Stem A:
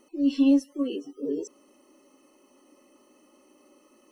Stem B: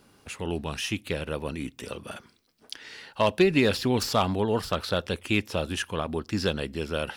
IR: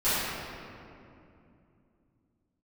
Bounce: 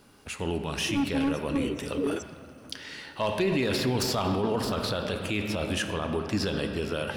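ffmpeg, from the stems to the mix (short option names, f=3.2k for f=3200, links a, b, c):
-filter_complex "[0:a]alimiter=limit=-19.5dB:level=0:latency=1:release=386,aeval=exprs='0.075*(abs(mod(val(0)/0.075+3,4)-2)-1)':c=same,adelay=750,volume=1.5dB[a];[1:a]volume=1dB,asplit=2[b][c];[c]volume=-21dB[d];[2:a]atrim=start_sample=2205[e];[d][e]afir=irnorm=-1:irlink=0[f];[a][b][f]amix=inputs=3:normalize=0,alimiter=limit=-18dB:level=0:latency=1:release=28"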